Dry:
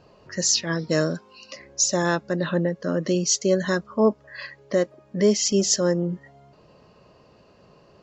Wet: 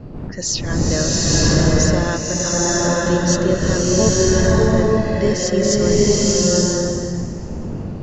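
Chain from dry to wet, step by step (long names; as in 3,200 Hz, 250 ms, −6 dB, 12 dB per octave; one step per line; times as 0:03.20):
wind on the microphone 200 Hz −28 dBFS
slow-attack reverb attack 900 ms, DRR −6.5 dB
level −1 dB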